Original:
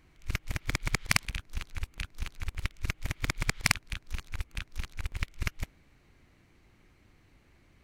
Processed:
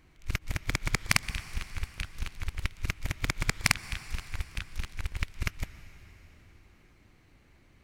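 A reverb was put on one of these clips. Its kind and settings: plate-style reverb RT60 4.2 s, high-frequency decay 0.9×, pre-delay 110 ms, DRR 15 dB; trim +1 dB

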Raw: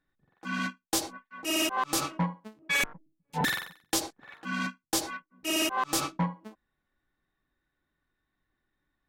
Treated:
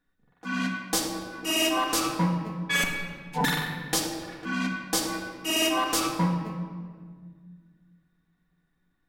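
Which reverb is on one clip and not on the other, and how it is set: simulated room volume 2600 m³, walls mixed, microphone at 1.8 m; trim +1 dB

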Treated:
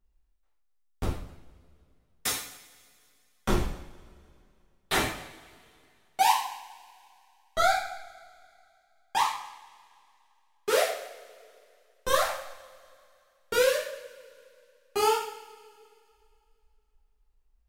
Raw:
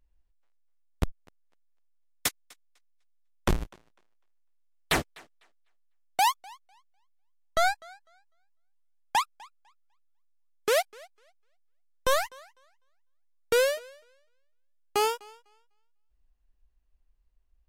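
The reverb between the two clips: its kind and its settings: two-slope reverb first 0.6 s, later 2.6 s, from -22 dB, DRR -8.5 dB; trim -8 dB

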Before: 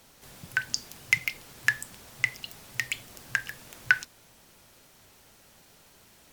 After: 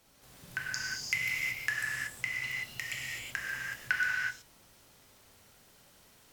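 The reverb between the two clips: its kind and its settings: gated-style reverb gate 400 ms flat, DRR -5.5 dB; trim -10 dB

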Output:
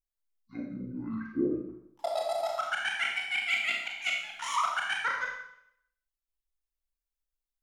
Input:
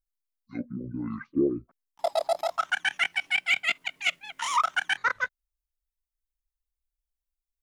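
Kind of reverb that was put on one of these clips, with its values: Schroeder reverb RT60 0.71 s, combs from 28 ms, DRR -0.5 dB; trim -6.5 dB

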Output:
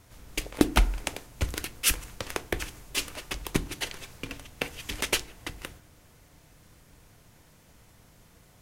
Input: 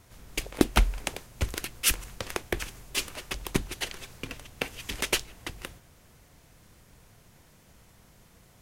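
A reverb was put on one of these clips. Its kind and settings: FDN reverb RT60 0.46 s, low-frequency decay 1.55×, high-frequency decay 0.55×, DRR 14 dB

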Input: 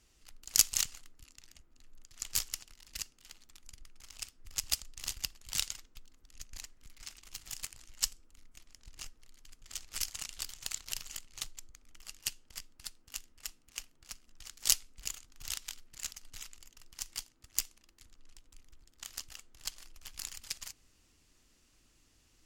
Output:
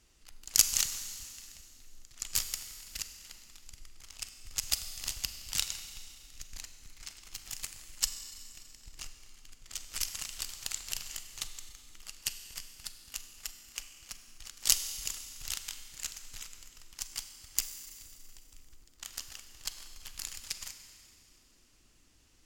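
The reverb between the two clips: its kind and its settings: Schroeder reverb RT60 2.4 s, combs from 32 ms, DRR 8 dB; trim +1.5 dB

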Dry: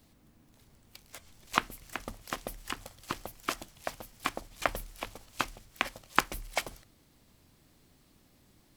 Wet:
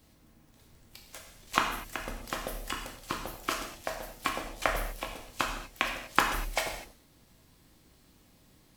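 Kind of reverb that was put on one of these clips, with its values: gated-style reverb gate 270 ms falling, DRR 0.5 dB

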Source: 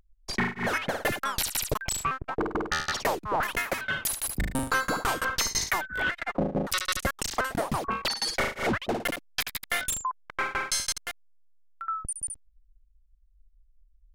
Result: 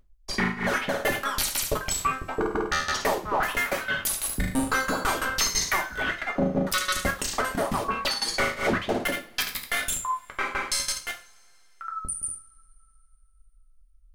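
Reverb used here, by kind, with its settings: two-slope reverb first 0.33 s, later 2.8 s, from -28 dB, DRR 1.5 dB

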